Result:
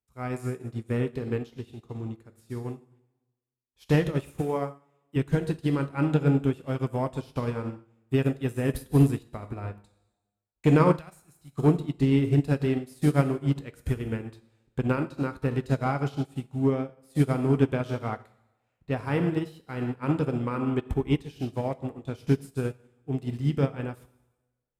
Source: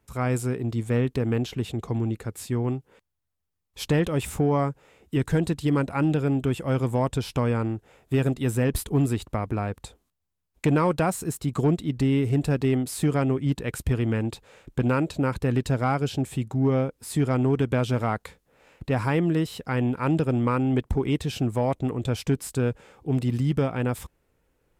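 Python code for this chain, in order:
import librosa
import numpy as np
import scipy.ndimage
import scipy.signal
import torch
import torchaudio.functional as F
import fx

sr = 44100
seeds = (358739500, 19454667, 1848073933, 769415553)

y = fx.rev_plate(x, sr, seeds[0], rt60_s=1.2, hf_ratio=0.9, predelay_ms=0, drr_db=4.5)
y = fx.dynamic_eq(y, sr, hz=7700.0, q=5.3, threshold_db=-58.0, ratio=4.0, max_db=-5)
y = fx.highpass(y, sr, hz=260.0, slope=6, at=(4.41, 5.16))
y = fx.peak_eq(y, sr, hz=410.0, db=-13.5, octaves=2.9, at=(10.99, 11.58))
y = fx.upward_expand(y, sr, threshold_db=-35.0, expansion=2.5)
y = y * librosa.db_to_amplitude(2.5)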